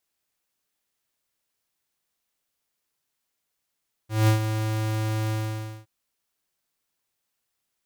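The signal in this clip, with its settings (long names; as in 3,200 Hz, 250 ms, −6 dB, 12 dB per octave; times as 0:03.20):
note with an ADSR envelope square 109 Hz, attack 188 ms, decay 110 ms, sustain −9 dB, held 1.22 s, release 548 ms −17 dBFS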